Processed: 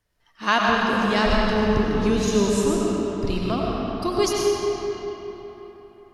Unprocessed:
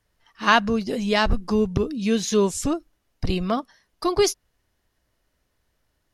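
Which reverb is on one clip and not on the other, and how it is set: algorithmic reverb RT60 4 s, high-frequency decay 0.65×, pre-delay 55 ms, DRR -3.5 dB; trim -3.5 dB

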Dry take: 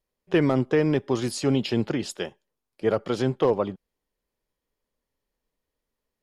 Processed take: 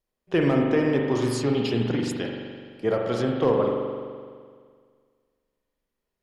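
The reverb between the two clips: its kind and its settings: spring tank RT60 1.9 s, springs 42 ms, chirp 60 ms, DRR 0 dB; trim -2 dB

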